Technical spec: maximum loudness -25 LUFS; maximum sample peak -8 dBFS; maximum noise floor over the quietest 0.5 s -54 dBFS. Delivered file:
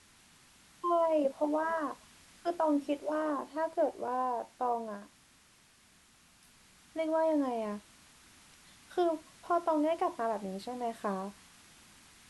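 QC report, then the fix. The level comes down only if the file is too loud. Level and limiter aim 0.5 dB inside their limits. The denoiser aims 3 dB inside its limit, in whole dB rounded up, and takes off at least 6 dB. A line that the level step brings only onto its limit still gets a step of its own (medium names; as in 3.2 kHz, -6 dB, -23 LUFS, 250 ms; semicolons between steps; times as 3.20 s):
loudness -33.5 LUFS: pass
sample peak -18.0 dBFS: pass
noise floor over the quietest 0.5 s -63 dBFS: pass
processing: none needed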